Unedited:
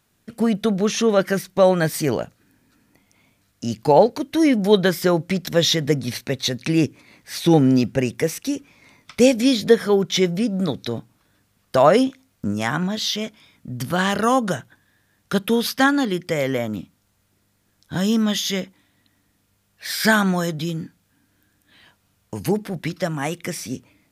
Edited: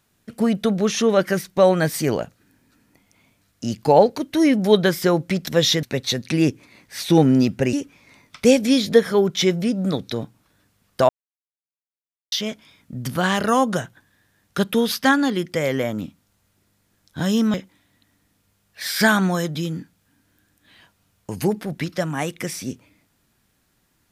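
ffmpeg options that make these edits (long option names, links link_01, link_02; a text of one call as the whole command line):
ffmpeg -i in.wav -filter_complex "[0:a]asplit=6[link_01][link_02][link_03][link_04][link_05][link_06];[link_01]atrim=end=5.832[link_07];[link_02]atrim=start=6.188:end=8.092[link_08];[link_03]atrim=start=8.478:end=11.84,asetpts=PTS-STARTPTS,afade=type=out:start_time=3.358:duration=0.004:curve=hsin[link_09];[link_04]atrim=start=11.84:end=13.07,asetpts=PTS-STARTPTS,volume=0[link_10];[link_05]atrim=start=13.07:end=18.292,asetpts=PTS-STARTPTS,afade=type=in:duration=0.004:curve=hsin[link_11];[link_06]atrim=start=18.578[link_12];[link_07][link_08]acrossfade=duration=0.004:curve1=hsin:curve2=hsin[link_13];[link_09][link_10][link_11]concat=n=3:v=0:a=1[link_14];[link_13][link_14]acrossfade=duration=0.004:curve1=hsin:curve2=hsin[link_15];[link_15][link_12]acrossfade=duration=0.004:curve1=hsin:curve2=hsin" out.wav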